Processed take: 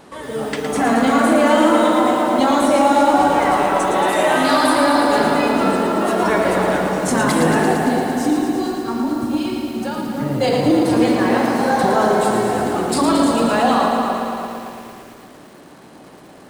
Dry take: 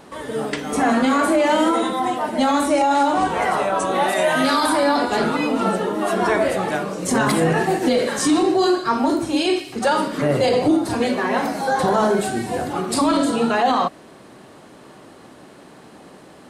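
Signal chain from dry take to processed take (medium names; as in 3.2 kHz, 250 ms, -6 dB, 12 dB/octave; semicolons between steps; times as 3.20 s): time-frequency box 7.74–10.41 s, 320–11000 Hz -10 dB; feedback echo behind a low-pass 291 ms, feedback 41%, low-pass 1.5 kHz, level -4.5 dB; bit-crushed delay 113 ms, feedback 80%, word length 7-bit, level -6 dB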